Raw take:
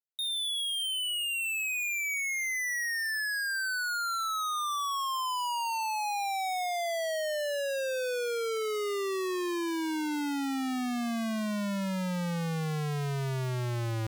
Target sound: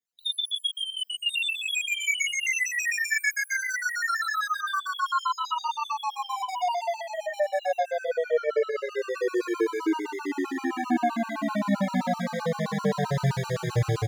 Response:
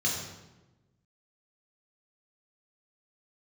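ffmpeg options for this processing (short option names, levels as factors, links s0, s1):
-filter_complex "[0:a]highpass=f=110:p=1,acrossover=split=370|1300[s0][s1][s2];[s1]dynaudnorm=f=130:g=17:m=5.96[s3];[s0][s3][s2]amix=inputs=3:normalize=0,alimiter=level_in=1.19:limit=0.0631:level=0:latency=1,volume=0.841,acontrast=78,asoftclip=type=tanh:threshold=0.0562,aecho=1:1:1078:0.668[s4];[1:a]atrim=start_sample=2205,atrim=end_sample=6174[s5];[s4][s5]afir=irnorm=-1:irlink=0,afftfilt=real='re*gt(sin(2*PI*7.7*pts/sr)*(1-2*mod(floor(b*sr/1024/780),2)),0)':imag='im*gt(sin(2*PI*7.7*pts/sr)*(1-2*mod(floor(b*sr/1024/780),2)),0)':win_size=1024:overlap=0.75,volume=0.447"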